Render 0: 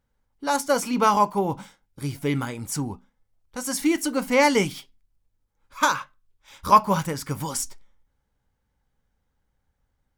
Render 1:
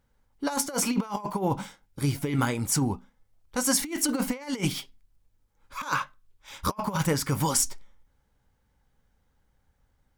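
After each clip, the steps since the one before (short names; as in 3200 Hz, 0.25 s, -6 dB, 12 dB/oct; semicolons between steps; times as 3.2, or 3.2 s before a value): negative-ratio compressor -26 dBFS, ratio -0.5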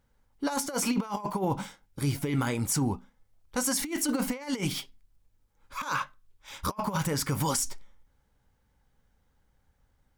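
limiter -18 dBFS, peak gain reduction 8 dB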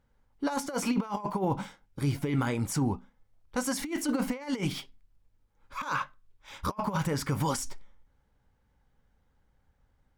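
high shelf 4800 Hz -9.5 dB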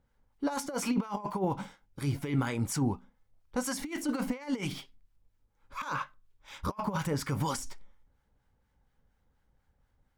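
harmonic tremolo 4.2 Hz, depth 50%, crossover 900 Hz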